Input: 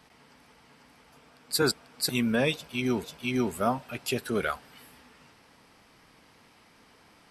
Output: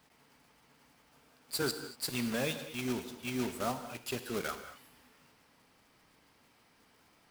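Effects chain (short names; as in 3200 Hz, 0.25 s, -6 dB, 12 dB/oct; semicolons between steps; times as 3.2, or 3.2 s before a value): block floating point 3-bit; non-linear reverb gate 0.26 s flat, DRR 9 dB; gain -8.5 dB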